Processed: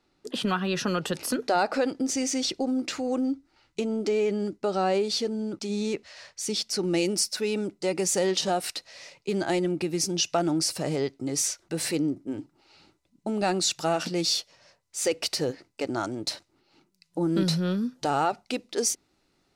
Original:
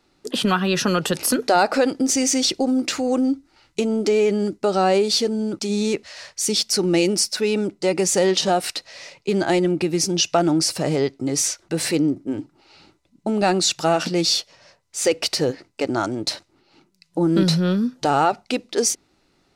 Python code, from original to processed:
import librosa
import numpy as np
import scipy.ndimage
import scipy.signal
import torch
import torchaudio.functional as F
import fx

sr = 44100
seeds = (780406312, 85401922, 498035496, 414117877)

y = fx.high_shelf(x, sr, hz=8100.0, db=fx.steps((0.0, -6.5), (6.83, 4.5)))
y = y * librosa.db_to_amplitude(-7.0)